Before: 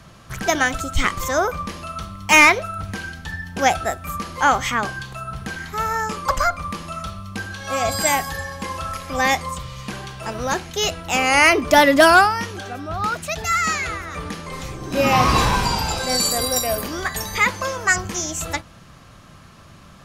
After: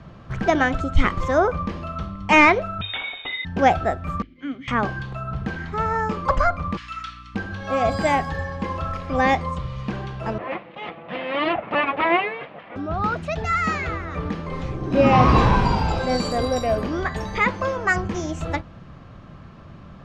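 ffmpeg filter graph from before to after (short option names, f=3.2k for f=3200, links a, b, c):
-filter_complex "[0:a]asettb=1/sr,asplit=3[a][b][c];[a]atrim=end=2.814[d];[b]atrim=start=2.81:end=3.45,asetpts=PTS-STARTPTS,afade=t=in:d=0.004:c=qsin,afade=t=out:st=0.636:d=0.004:c=qsin,acontrast=48,lowpass=f=3.2k:t=q:w=0.5098,lowpass=f=3.2k:t=q:w=0.6013,lowpass=f=3.2k:t=q:w=0.9,lowpass=f=3.2k:t=q:w=2.563,afreqshift=-3800[e];[c]atrim=start=3.446[f];[d][e]acrossfade=d=0.004:c1=hsin:c2=qsin[g];[g][f]acrossfade=d=0.004:c1=qsin:c2=hsin,asettb=1/sr,asplit=3[h][i][j];[h]atrim=end=4.224[k];[i]atrim=start=4.22:end=4.68,asetpts=PTS-STARTPTS,afade=t=in:d=0.004:c=qsin,afade=t=out:st=0.456:d=0.004:c=qsin,asplit=3[l][m][n];[l]bandpass=f=270:t=q:w=8,volume=0dB[o];[m]bandpass=f=2.29k:t=q:w=8,volume=-6dB[p];[n]bandpass=f=3.01k:t=q:w=8,volume=-9dB[q];[o][p][q]amix=inputs=3:normalize=0,agate=range=-33dB:threshold=-45dB:ratio=3:release=100:detection=peak[r];[j]atrim=start=4.676[s];[k][r]acrossfade=d=0.004:c1=hsin:c2=qsin[t];[t][s]acrossfade=d=0.004:c1=qsin:c2=hsin,asettb=1/sr,asplit=3[u][v][w];[u]atrim=end=6.774[x];[v]atrim=start=6.77:end=7.35,asetpts=PTS-STARTPTS,afade=t=in:d=0.004:c=qsin,afade=t=out:st=0.576:d=0.004:c=qsin,asuperpass=centerf=3900:order=8:qfactor=0.51,acontrast=77,aeval=exprs='val(0)+0.00398*(sin(2*PI*60*n/s)+sin(2*PI*2*60*n/s)/2+sin(2*PI*3*60*n/s)/3+sin(2*PI*4*60*n/s)/4+sin(2*PI*5*60*n/s)/5)':c=same[y];[w]atrim=start=7.346[z];[x][y]acrossfade=d=0.004:c1=hsin:c2=qsin[aa];[aa][z]acrossfade=d=0.004:c1=qsin:c2=hsin,asettb=1/sr,asplit=3[ab][ac][ad];[ab]atrim=end=10.384[ae];[ac]atrim=start=10.38:end=12.76,asetpts=PTS-STARTPTS,afade=t=in:d=0.004:c=qsin,afade=t=out:st=2.376:d=0.004:c=qsin,aecho=1:1:5.8:0.65,atrim=end_sample=104958,aeval=exprs='abs(val(0))':c=same,highpass=230,equalizer=f=270:t=q:w=4:g=-9,equalizer=f=390:t=q:w=4:g=-9,equalizer=f=890:t=q:w=4:g=-5,equalizer=f=1.5k:t=q:w=4:g=-8,lowpass=f=2.7k:w=0.5412,lowpass=f=2.7k:w=1.3066[af];[ad]atrim=start=12.756[ag];[ae][af]acrossfade=d=0.004:c1=hsin:c2=qsin[ah];[ah][ag]acrossfade=d=0.004:c1=qsin:c2=hsin,lowpass=3.5k,tiltshelf=f=970:g=5,bandreject=f=50:t=h:w=6,bandreject=f=100:t=h:w=6"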